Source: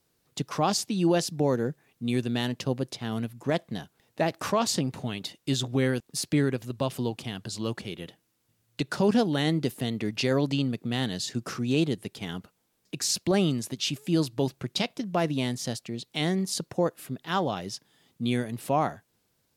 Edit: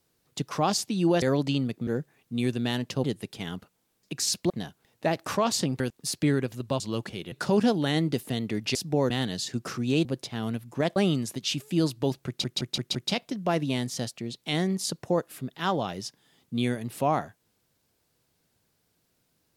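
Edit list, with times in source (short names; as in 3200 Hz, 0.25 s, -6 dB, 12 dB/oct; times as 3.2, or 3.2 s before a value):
1.22–1.57 swap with 10.26–10.91
2.74–3.65 swap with 11.86–13.32
4.95–5.9 cut
6.9–7.52 cut
8.04–8.83 cut
14.63 stutter 0.17 s, 5 plays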